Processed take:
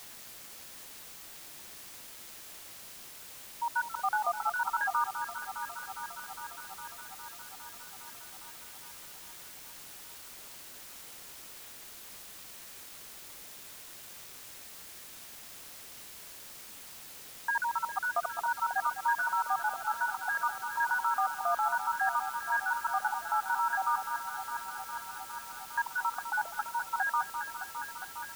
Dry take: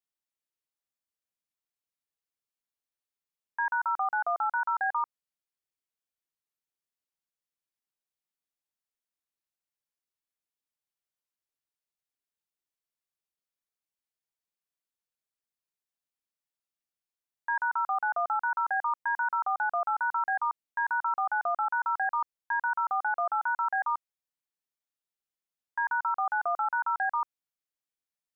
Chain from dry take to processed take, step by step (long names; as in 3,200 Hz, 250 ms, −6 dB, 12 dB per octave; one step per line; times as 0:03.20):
time-frequency cells dropped at random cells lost 45%
delay that swaps between a low-pass and a high-pass 204 ms, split 1,400 Hz, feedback 87%, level −10.5 dB
bit-depth reduction 8 bits, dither triangular